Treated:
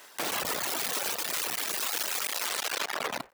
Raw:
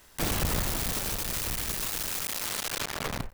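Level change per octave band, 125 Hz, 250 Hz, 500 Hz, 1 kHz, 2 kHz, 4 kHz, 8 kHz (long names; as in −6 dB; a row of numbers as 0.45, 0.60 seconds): −19.0, −7.5, +0.5, +2.5, +3.0, +2.0, 0.0 decibels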